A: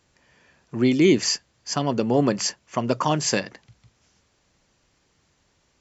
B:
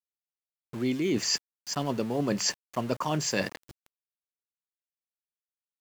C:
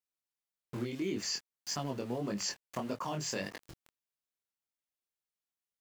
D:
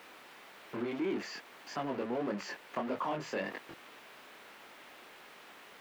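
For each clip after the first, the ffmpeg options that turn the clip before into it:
ffmpeg -i in.wav -af "areverse,acompressor=threshold=-29dB:ratio=8,areverse,aeval=exprs='val(0)*gte(abs(val(0)),0.00596)':channel_layout=same,volume=4dB" out.wav
ffmpeg -i in.wav -af "acompressor=threshold=-33dB:ratio=6,flanger=delay=19.5:depth=6:speed=1.7,volume=3dB" out.wav
ffmpeg -i in.wav -filter_complex "[0:a]aeval=exprs='val(0)+0.5*0.0178*sgn(val(0))':channel_layout=same,acrossover=split=210 3000:gain=0.1 1 0.0794[link_01][link_02][link_03];[link_01][link_02][link_03]amix=inputs=3:normalize=0" out.wav

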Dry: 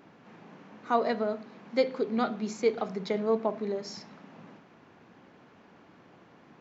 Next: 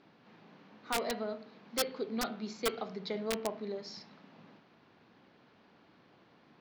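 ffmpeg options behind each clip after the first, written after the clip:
ffmpeg -i in.wav -af "lowpass=frequency=4400:width_type=q:width=2.3,aeval=exprs='(mod(6.31*val(0)+1,2)-1)/6.31':channel_layout=same,bandreject=frequency=89.3:width_type=h:width=4,bandreject=frequency=178.6:width_type=h:width=4,bandreject=frequency=267.9:width_type=h:width=4,bandreject=frequency=357.2:width_type=h:width=4,bandreject=frequency=446.5:width_type=h:width=4,bandreject=frequency=535.8:width_type=h:width=4,bandreject=frequency=625.1:width_type=h:width=4,bandreject=frequency=714.4:width_type=h:width=4,bandreject=frequency=803.7:width_type=h:width=4,bandreject=frequency=893:width_type=h:width=4,bandreject=frequency=982.3:width_type=h:width=4,bandreject=frequency=1071.6:width_type=h:width=4,bandreject=frequency=1160.9:width_type=h:width=4,bandreject=frequency=1250.2:width_type=h:width=4,bandreject=frequency=1339.5:width_type=h:width=4,bandreject=frequency=1428.8:width_type=h:width=4,bandreject=frequency=1518.1:width_type=h:width=4,bandreject=frequency=1607.4:width_type=h:width=4,bandreject=frequency=1696.7:width_type=h:width=4,bandreject=frequency=1786:width_type=h:width=4,bandreject=frequency=1875.3:width_type=h:width=4,bandreject=frequency=1964.6:width_type=h:width=4,bandreject=frequency=2053.9:width_type=h:width=4,bandreject=frequency=2143.2:width_type=h:width=4,bandreject=frequency=2232.5:width_type=h:width=4,bandreject=frequency=2321.8:width_type=h:width=4,bandreject=frequency=2411.1:width_type=h:width=4,bandreject=frequency=2500.4:width_type=h:width=4,bandreject=frequency=2589.7:width_type=h:width=4,bandreject=frequency=2679:width_type=h:width=4,bandreject=frequency=2768.3:width_type=h:width=4,bandreject=frequency=2857.6:width_type=h:width=4,bandreject=frequency=2946.9:width_type=h:width=4,bandreject=frequency=3036.2:width_type=h:width=4,bandreject=frequency=3125.5:width_type=h:width=4,bandreject=frequency=3214.8:width_type=h:width=4,bandreject=frequency=3304.1:width_type=h:width=4,volume=-7dB" out.wav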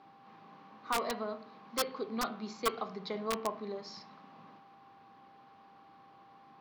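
ffmpeg -i in.wav -af "equalizer=frequency=1100:width=4.4:gain=13,aeval=exprs='val(0)+0.00158*sin(2*PI*790*n/s)':channel_layout=same,volume=-1.5dB" out.wav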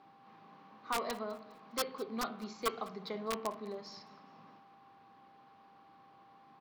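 ffmpeg -i in.wav -af "aecho=1:1:204|408|612:0.0891|0.0374|0.0157,volume=-2.5dB" out.wav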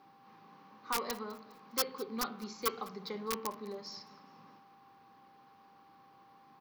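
ffmpeg -i in.wav -af "aexciter=amount=1.9:drive=4.2:freq=4800,asuperstop=centerf=660:order=4:qfactor=5.4" out.wav

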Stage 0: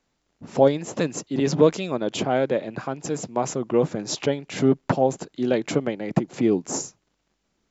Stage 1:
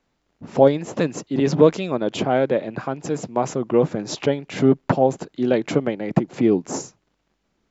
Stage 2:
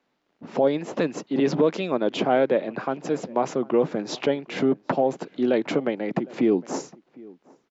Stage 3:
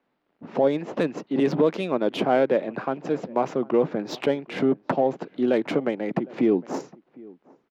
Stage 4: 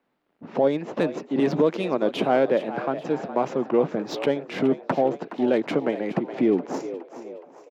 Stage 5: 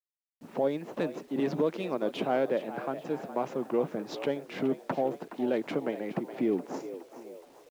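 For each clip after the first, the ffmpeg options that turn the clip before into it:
ffmpeg -i in.wav -af "highshelf=frequency=5800:gain=-11,volume=3dB" out.wav
ffmpeg -i in.wav -filter_complex "[0:a]alimiter=limit=-10dB:level=0:latency=1:release=75,acrossover=split=170 5700:gain=0.1 1 0.158[link_01][link_02][link_03];[link_01][link_02][link_03]amix=inputs=3:normalize=0,asplit=2[link_04][link_05];[link_05]adelay=758,volume=-23dB,highshelf=frequency=4000:gain=-17.1[link_06];[link_04][link_06]amix=inputs=2:normalize=0" out.wav
ffmpeg -i in.wav -af "adynamicsmooth=sensitivity=3.5:basefreq=3500" out.wav
ffmpeg -i in.wav -filter_complex "[0:a]asplit=5[link_01][link_02][link_03][link_04][link_05];[link_02]adelay=418,afreqshift=75,volume=-13dB[link_06];[link_03]adelay=836,afreqshift=150,volume=-19.9dB[link_07];[link_04]adelay=1254,afreqshift=225,volume=-26.9dB[link_08];[link_05]adelay=1672,afreqshift=300,volume=-33.8dB[link_09];[link_01][link_06][link_07][link_08][link_09]amix=inputs=5:normalize=0" out.wav
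ffmpeg -i in.wav -af "acrusher=bits=8:mix=0:aa=0.000001,volume=-7.5dB" out.wav

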